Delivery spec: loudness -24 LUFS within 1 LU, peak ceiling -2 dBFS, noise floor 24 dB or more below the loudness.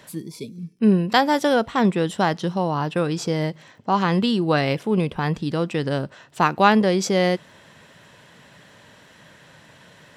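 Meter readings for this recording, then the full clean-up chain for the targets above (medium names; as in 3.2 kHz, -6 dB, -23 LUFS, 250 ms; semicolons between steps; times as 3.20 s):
tick rate 40 per s; loudness -21.0 LUFS; peak level -2.0 dBFS; loudness target -24.0 LUFS
-> de-click; trim -3 dB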